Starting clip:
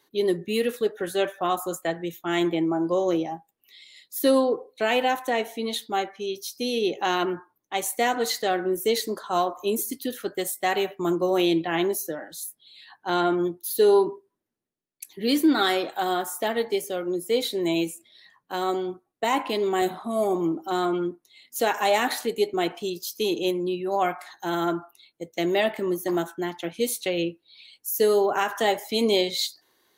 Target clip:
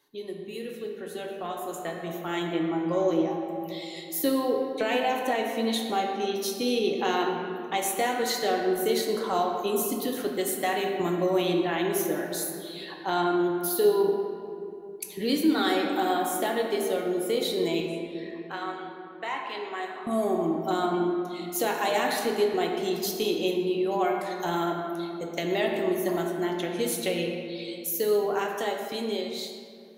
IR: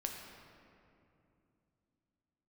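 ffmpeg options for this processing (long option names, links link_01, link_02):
-filter_complex "[0:a]acompressor=threshold=-39dB:ratio=2,asettb=1/sr,asplit=3[link_01][link_02][link_03];[link_01]atrim=end=17.804[link_04];[link_02]atrim=start=17.8:end=20.07,asetpts=PTS-STARTPTS,afade=type=in:duration=0.004:curve=qsin,afade=type=out:start_time=2.266:duration=0.004:curve=qsin,bandpass=frequency=1700:width_type=q:width=1.1:csg=0[link_05];[link_03]atrim=start=20.066[link_06];[link_04][link_05]acrossfade=duration=0.004:curve1=hsin:curve2=qsin[link_07];[link_07][link_06]acrossfade=duration=0.004:curve1=qsin:curve2=hsin[link_08];[1:a]atrim=start_sample=2205[link_09];[link_08][link_09]afir=irnorm=-1:irlink=0,dynaudnorm=framelen=590:gausssize=7:maxgain=10.5dB,volume=-2.5dB"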